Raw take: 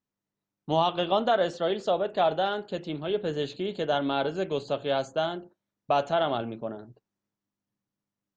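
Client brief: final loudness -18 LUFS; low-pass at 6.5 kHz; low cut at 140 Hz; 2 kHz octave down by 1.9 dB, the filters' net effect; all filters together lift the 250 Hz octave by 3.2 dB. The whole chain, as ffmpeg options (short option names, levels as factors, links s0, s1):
-af "highpass=140,lowpass=6500,equalizer=f=250:t=o:g=5,equalizer=f=2000:t=o:g=-3,volume=2.99"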